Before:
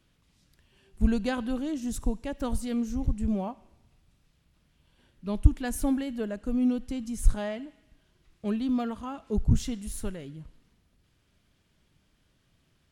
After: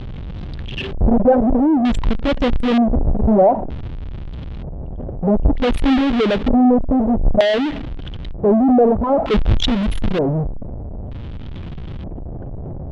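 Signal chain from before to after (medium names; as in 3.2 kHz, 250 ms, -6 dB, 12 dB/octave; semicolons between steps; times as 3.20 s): resonances exaggerated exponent 3; power-law waveshaper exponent 0.35; LFO low-pass square 0.54 Hz 660–3400 Hz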